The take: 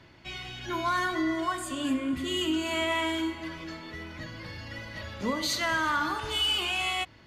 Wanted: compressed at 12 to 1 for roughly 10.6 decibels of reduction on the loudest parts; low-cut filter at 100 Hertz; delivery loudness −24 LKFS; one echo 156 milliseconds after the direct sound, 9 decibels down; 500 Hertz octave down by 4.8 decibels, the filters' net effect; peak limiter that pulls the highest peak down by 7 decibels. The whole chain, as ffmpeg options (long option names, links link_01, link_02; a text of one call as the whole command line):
ffmpeg -i in.wav -af "highpass=100,equalizer=frequency=500:width_type=o:gain=-8,acompressor=threshold=-35dB:ratio=12,alimiter=level_in=9.5dB:limit=-24dB:level=0:latency=1,volume=-9.5dB,aecho=1:1:156:0.355,volume=16.5dB" out.wav